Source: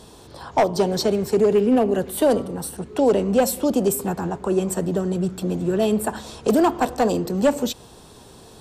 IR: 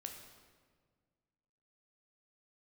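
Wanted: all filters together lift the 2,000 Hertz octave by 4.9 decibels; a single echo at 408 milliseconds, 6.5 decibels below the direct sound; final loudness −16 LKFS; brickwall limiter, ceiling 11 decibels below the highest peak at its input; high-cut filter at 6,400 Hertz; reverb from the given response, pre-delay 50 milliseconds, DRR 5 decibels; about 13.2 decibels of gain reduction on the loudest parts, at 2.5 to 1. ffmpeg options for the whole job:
-filter_complex "[0:a]lowpass=6400,equalizer=frequency=2000:width_type=o:gain=6.5,acompressor=threshold=-34dB:ratio=2.5,alimiter=level_in=3.5dB:limit=-24dB:level=0:latency=1,volume=-3.5dB,aecho=1:1:408:0.473,asplit=2[link_01][link_02];[1:a]atrim=start_sample=2205,adelay=50[link_03];[link_02][link_03]afir=irnorm=-1:irlink=0,volume=-1.5dB[link_04];[link_01][link_04]amix=inputs=2:normalize=0,volume=18dB"

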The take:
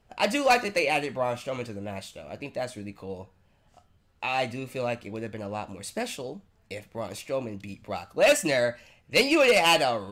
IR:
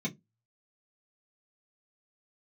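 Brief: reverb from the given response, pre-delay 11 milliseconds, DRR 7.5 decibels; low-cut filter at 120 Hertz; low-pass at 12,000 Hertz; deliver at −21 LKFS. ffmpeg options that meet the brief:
-filter_complex "[0:a]highpass=120,lowpass=12000,asplit=2[link_01][link_02];[1:a]atrim=start_sample=2205,adelay=11[link_03];[link_02][link_03]afir=irnorm=-1:irlink=0,volume=-10.5dB[link_04];[link_01][link_04]amix=inputs=2:normalize=0,volume=4.5dB"

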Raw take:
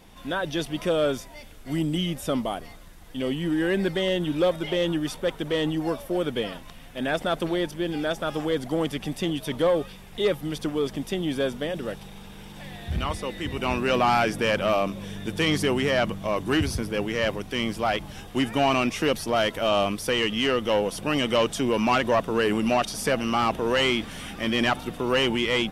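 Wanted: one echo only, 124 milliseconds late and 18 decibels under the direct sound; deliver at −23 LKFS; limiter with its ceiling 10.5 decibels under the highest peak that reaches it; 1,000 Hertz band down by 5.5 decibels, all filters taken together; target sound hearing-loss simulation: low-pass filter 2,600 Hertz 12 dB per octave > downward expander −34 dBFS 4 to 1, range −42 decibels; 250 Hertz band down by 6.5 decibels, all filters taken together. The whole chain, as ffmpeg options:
ffmpeg -i in.wav -af "equalizer=frequency=250:width_type=o:gain=-8.5,equalizer=frequency=1000:width_type=o:gain=-7,alimiter=level_in=0.5dB:limit=-24dB:level=0:latency=1,volume=-0.5dB,lowpass=2600,aecho=1:1:124:0.126,agate=range=-42dB:threshold=-34dB:ratio=4,volume=12.5dB" out.wav

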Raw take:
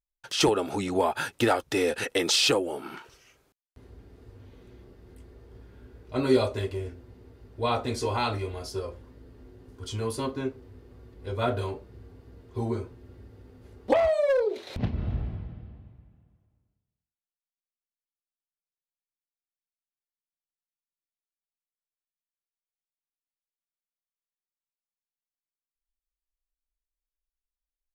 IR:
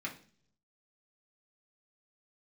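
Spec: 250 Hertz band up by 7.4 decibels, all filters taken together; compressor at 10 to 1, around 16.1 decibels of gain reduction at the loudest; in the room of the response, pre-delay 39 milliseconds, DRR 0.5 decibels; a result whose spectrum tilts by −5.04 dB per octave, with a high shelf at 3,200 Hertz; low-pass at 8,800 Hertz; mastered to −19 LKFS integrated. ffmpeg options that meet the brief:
-filter_complex "[0:a]lowpass=8800,equalizer=frequency=250:width_type=o:gain=9,highshelf=frequency=3200:gain=4.5,acompressor=threshold=-28dB:ratio=10,asplit=2[link_01][link_02];[1:a]atrim=start_sample=2205,adelay=39[link_03];[link_02][link_03]afir=irnorm=-1:irlink=0,volume=-2.5dB[link_04];[link_01][link_04]amix=inputs=2:normalize=0,volume=12dB"

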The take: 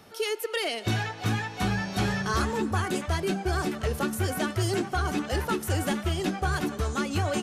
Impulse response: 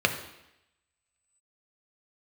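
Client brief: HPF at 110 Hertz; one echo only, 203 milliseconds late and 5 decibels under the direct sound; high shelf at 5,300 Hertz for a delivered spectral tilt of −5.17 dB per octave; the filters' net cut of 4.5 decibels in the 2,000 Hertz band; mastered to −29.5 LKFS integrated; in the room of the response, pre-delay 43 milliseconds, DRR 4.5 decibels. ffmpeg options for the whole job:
-filter_complex "[0:a]highpass=110,equalizer=frequency=2000:width_type=o:gain=-5.5,highshelf=frequency=5300:gain=-5.5,aecho=1:1:203:0.562,asplit=2[link_01][link_02];[1:a]atrim=start_sample=2205,adelay=43[link_03];[link_02][link_03]afir=irnorm=-1:irlink=0,volume=-18.5dB[link_04];[link_01][link_04]amix=inputs=2:normalize=0,volume=-1.5dB"

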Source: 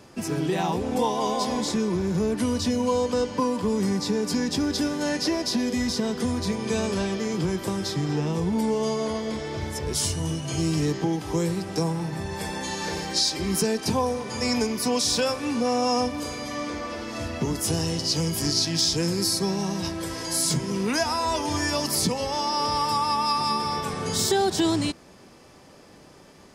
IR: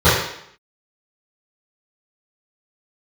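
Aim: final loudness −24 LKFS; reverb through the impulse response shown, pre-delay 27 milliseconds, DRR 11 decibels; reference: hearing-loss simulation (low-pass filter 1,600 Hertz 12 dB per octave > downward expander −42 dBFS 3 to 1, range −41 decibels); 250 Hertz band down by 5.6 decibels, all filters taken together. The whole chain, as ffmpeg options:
-filter_complex "[0:a]equalizer=frequency=250:width_type=o:gain=-7.5,asplit=2[link_01][link_02];[1:a]atrim=start_sample=2205,adelay=27[link_03];[link_02][link_03]afir=irnorm=-1:irlink=0,volume=-37.5dB[link_04];[link_01][link_04]amix=inputs=2:normalize=0,lowpass=1600,agate=range=-41dB:threshold=-42dB:ratio=3,volume=5dB"

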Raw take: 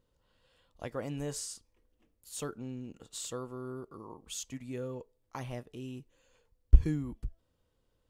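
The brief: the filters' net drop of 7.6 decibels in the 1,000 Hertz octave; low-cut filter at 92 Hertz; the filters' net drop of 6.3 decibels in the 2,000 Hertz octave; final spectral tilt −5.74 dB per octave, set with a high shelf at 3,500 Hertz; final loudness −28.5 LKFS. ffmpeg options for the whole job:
ffmpeg -i in.wav -af "highpass=92,equalizer=frequency=1000:width_type=o:gain=-8.5,equalizer=frequency=2000:width_type=o:gain=-3,highshelf=frequency=3500:gain=-7.5,volume=13dB" out.wav

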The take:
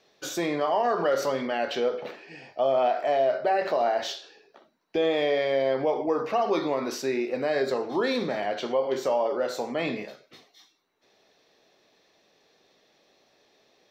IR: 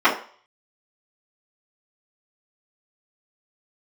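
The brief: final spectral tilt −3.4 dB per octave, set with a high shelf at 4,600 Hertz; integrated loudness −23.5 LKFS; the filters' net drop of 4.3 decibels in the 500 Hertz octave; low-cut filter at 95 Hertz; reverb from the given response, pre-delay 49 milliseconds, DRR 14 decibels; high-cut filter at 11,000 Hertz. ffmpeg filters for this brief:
-filter_complex "[0:a]highpass=95,lowpass=11000,equalizer=frequency=500:width_type=o:gain=-5.5,highshelf=frequency=4600:gain=5,asplit=2[link_01][link_02];[1:a]atrim=start_sample=2205,adelay=49[link_03];[link_02][link_03]afir=irnorm=-1:irlink=0,volume=-37dB[link_04];[link_01][link_04]amix=inputs=2:normalize=0,volume=6dB"

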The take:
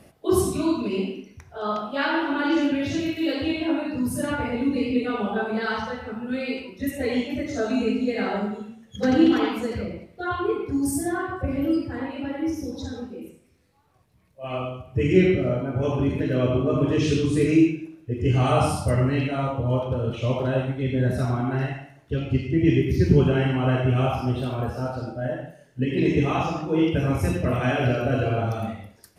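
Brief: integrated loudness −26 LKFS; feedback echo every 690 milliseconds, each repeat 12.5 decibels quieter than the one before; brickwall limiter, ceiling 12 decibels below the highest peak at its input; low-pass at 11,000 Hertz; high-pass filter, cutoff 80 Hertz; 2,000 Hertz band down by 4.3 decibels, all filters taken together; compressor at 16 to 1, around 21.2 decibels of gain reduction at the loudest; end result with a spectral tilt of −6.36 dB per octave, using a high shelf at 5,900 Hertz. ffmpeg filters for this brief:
ffmpeg -i in.wav -af "highpass=80,lowpass=11000,equalizer=frequency=2000:width_type=o:gain=-6.5,highshelf=frequency=5900:gain=3.5,acompressor=threshold=-34dB:ratio=16,alimiter=level_in=11.5dB:limit=-24dB:level=0:latency=1,volume=-11.5dB,aecho=1:1:690|1380|2070:0.237|0.0569|0.0137,volume=17.5dB" out.wav

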